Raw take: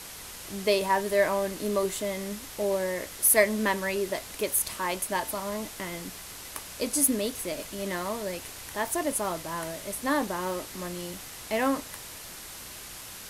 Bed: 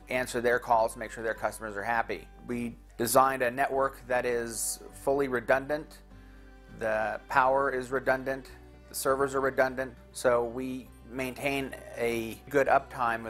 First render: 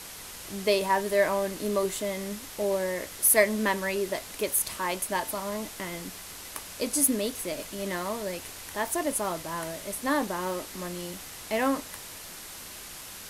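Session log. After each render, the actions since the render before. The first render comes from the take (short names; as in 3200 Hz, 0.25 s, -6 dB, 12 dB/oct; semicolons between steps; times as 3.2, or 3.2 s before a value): de-hum 60 Hz, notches 2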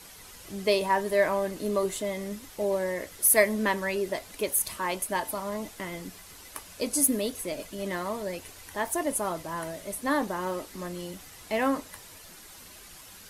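denoiser 8 dB, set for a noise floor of -43 dBFS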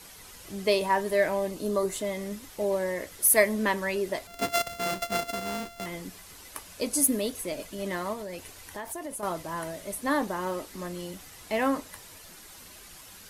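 1.16–1.93 bell 880 Hz -> 3400 Hz -12.5 dB 0.33 oct; 4.27–5.86 sample sorter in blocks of 64 samples; 8.13–9.23 compressor, threshold -33 dBFS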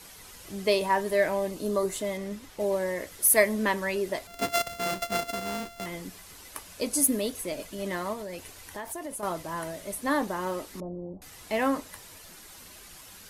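2.17–2.6 high shelf 6400 Hz -8 dB; 10.8–11.22 steep low-pass 790 Hz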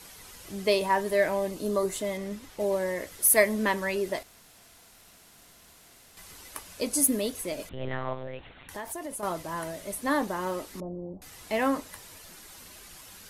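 4.23–6.17 room tone; 7.69–8.69 monotone LPC vocoder at 8 kHz 130 Hz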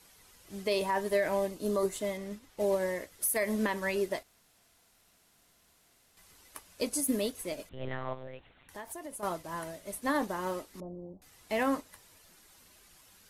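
limiter -19 dBFS, peak gain reduction 11 dB; upward expander 1.5:1, over -47 dBFS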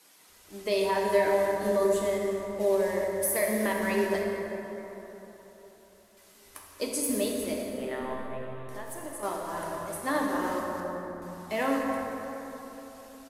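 bands offset in time highs, lows 0.28 s, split 170 Hz; plate-style reverb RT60 3.9 s, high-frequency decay 0.45×, DRR -1.5 dB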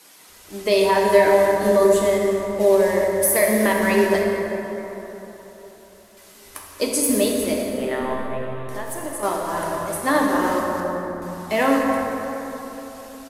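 gain +9.5 dB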